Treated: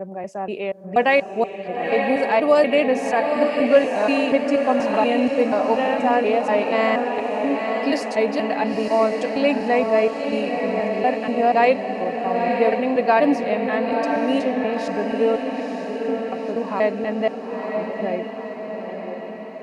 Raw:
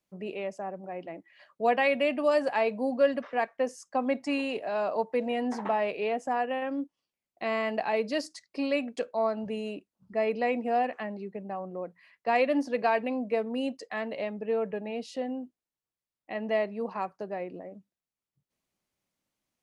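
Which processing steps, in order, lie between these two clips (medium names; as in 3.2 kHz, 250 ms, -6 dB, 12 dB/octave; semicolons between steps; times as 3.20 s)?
slices played last to first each 240 ms, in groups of 4; harmonic-percussive split harmonic +4 dB; echo that smears into a reverb 948 ms, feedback 58%, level -4.5 dB; trim +5 dB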